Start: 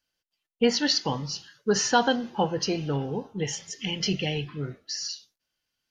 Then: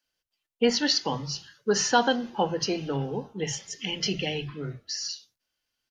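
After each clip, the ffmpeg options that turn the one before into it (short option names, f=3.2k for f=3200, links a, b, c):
-filter_complex "[0:a]acrossover=split=160[a][b];[a]adelay=50[c];[c][b]amix=inputs=2:normalize=0"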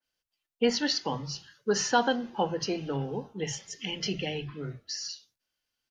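-af "adynamicequalizer=threshold=0.00794:dfrequency=2800:dqfactor=0.7:tfrequency=2800:tqfactor=0.7:attack=5:release=100:ratio=0.375:range=3:mode=cutabove:tftype=highshelf,volume=-2.5dB"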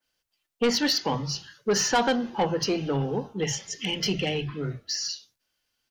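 -af "asoftclip=type=tanh:threshold=-23.5dB,volume=6.5dB"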